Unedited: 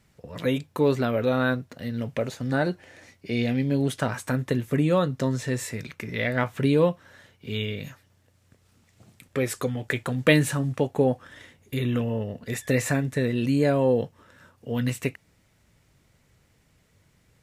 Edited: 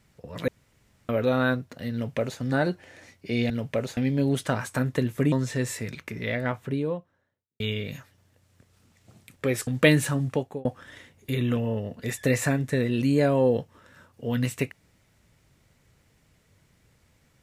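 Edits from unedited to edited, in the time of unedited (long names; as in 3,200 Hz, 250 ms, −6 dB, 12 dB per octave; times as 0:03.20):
0:00.48–0:01.09: fill with room tone
0:01.93–0:02.40: duplicate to 0:03.50
0:04.85–0:05.24: remove
0:05.82–0:07.52: fade out and dull
0:09.59–0:10.11: remove
0:10.74–0:11.09: fade out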